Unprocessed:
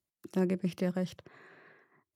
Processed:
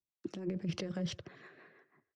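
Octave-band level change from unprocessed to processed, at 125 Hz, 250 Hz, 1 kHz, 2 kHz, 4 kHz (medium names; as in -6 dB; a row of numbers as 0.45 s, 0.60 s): -4.5 dB, -6.0 dB, -7.5 dB, -4.0 dB, +5.0 dB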